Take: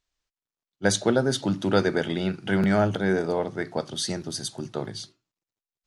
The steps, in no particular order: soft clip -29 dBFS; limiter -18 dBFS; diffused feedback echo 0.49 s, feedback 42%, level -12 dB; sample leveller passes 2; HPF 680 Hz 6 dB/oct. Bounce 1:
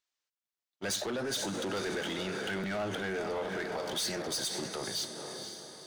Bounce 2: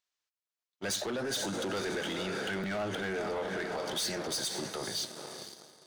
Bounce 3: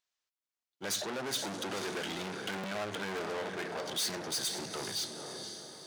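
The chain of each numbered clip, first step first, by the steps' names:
sample leveller > diffused feedback echo > limiter > HPF > soft clip; diffused feedback echo > sample leveller > limiter > HPF > soft clip; limiter > diffused feedback echo > soft clip > sample leveller > HPF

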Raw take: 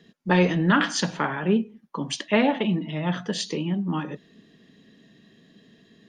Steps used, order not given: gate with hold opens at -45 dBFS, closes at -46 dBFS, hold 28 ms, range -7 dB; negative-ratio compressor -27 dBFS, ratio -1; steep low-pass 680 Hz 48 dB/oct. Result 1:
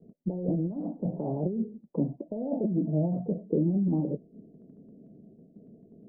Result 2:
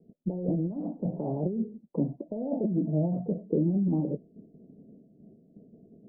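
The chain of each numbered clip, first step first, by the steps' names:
negative-ratio compressor > steep low-pass > gate with hold; gate with hold > negative-ratio compressor > steep low-pass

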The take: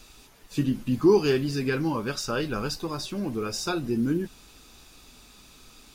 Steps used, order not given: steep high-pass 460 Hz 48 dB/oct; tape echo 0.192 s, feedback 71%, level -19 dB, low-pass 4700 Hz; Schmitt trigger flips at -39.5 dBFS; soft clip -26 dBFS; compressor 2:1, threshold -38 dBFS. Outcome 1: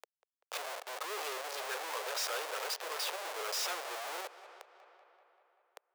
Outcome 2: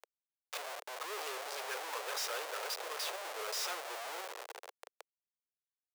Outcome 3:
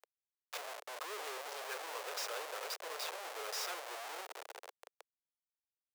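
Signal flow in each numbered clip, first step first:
Schmitt trigger > tape echo > compressor > soft clip > steep high-pass; tape echo > soft clip > Schmitt trigger > compressor > steep high-pass; tape echo > soft clip > compressor > Schmitt trigger > steep high-pass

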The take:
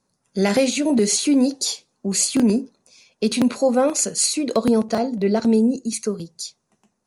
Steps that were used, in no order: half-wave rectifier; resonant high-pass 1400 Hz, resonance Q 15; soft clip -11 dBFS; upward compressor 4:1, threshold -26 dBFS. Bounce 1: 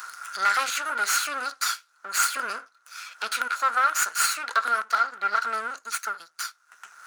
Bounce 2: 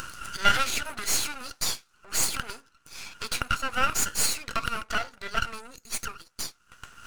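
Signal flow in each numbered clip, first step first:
upward compressor > half-wave rectifier > resonant high-pass > soft clip; upward compressor > soft clip > resonant high-pass > half-wave rectifier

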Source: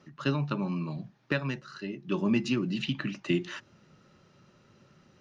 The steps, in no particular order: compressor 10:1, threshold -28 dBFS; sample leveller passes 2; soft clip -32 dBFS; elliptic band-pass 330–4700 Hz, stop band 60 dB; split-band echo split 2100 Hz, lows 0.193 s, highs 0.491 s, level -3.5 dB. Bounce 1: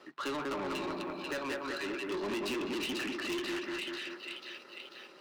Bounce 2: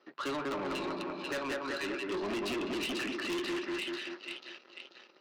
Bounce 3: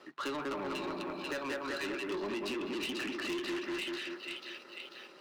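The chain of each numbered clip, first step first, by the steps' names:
elliptic band-pass > compressor > split-band echo > soft clip > sample leveller; split-band echo > sample leveller > elliptic band-pass > soft clip > compressor; split-band echo > compressor > elliptic band-pass > soft clip > sample leveller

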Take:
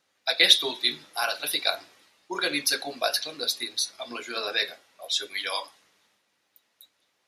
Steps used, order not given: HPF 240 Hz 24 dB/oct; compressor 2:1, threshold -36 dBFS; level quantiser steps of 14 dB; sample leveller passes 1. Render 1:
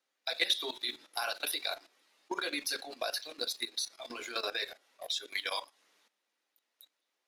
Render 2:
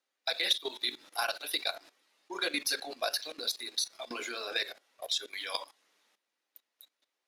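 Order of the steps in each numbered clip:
HPF > sample leveller > level quantiser > compressor; HPF > level quantiser > compressor > sample leveller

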